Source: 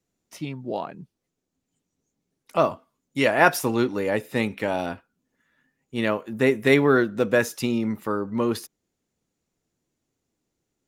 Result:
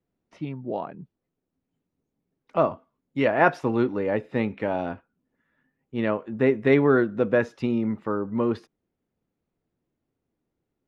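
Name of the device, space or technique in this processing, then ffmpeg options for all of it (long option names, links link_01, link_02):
phone in a pocket: -af "lowpass=3700,highshelf=frequency=2300:gain=-11"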